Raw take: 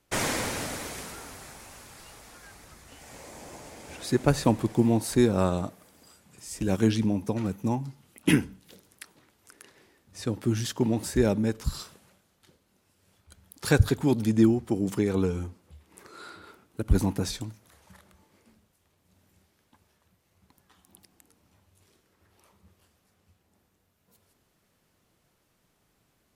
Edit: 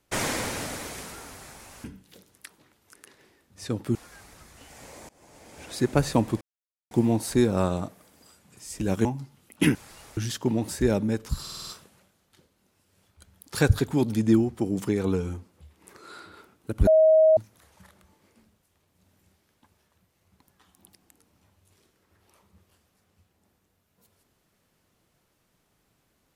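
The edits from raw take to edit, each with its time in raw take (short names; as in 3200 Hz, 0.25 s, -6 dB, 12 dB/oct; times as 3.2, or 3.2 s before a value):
1.84–2.26 swap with 8.41–10.52
3.4–4.03 fade in, from -23.5 dB
4.72 insert silence 0.50 s
6.86–7.71 cut
11.77 stutter 0.05 s, 6 plays
16.97–17.47 bleep 633 Hz -13.5 dBFS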